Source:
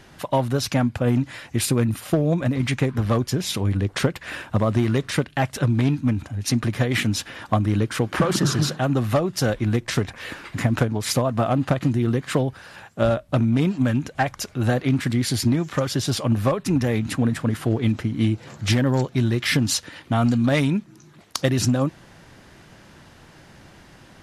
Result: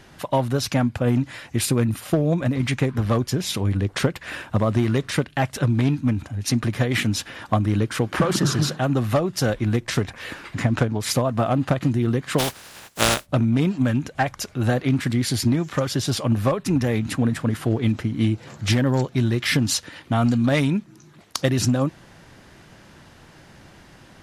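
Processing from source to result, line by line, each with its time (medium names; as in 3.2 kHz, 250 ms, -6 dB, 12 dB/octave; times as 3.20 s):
10.54–11.00 s: low-pass 8.6 kHz
12.38–13.25 s: spectral contrast reduction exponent 0.32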